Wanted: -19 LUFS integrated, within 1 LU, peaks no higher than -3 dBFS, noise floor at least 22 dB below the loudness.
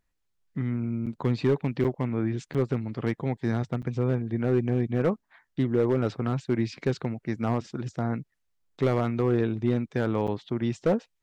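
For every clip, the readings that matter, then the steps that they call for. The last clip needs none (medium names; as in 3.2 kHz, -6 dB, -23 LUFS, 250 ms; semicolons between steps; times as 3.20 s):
clipped samples 0.6%; clipping level -16.0 dBFS; dropouts 5; longest dropout 7.2 ms; loudness -28.0 LUFS; peak level -16.0 dBFS; loudness target -19.0 LUFS
-> clip repair -16 dBFS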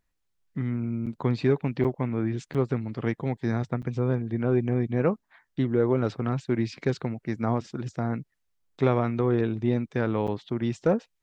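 clipped samples 0.0%; dropouts 5; longest dropout 7.2 ms
-> interpolate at 1.06/1.84/2.54/3.82/10.27 s, 7.2 ms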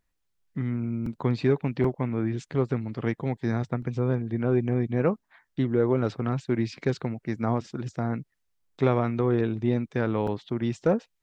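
dropouts 0; loudness -27.5 LUFS; peak level -9.0 dBFS; loudness target -19.0 LUFS
-> trim +8.5 dB; peak limiter -3 dBFS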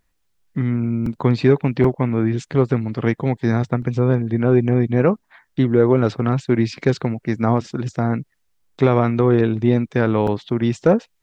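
loudness -19.0 LUFS; peak level -3.0 dBFS; noise floor -68 dBFS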